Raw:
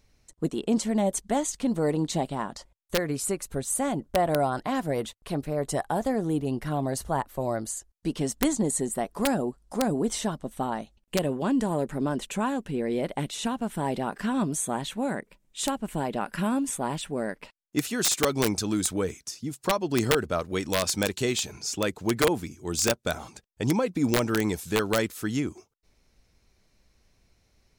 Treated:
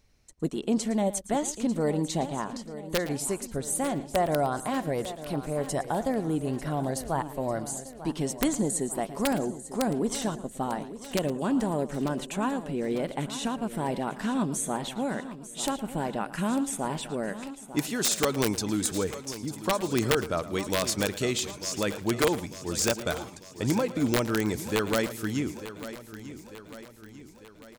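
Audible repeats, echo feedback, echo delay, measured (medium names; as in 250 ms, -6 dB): 6, no regular repeats, 112 ms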